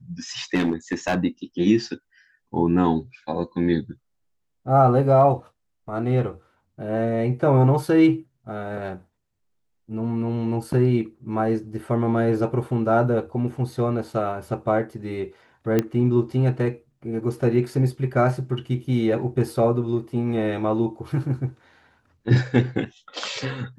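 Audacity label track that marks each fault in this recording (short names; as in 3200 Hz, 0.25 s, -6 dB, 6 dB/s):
0.540000	1.180000	clipped -16.5 dBFS
15.790000	15.790000	pop -8 dBFS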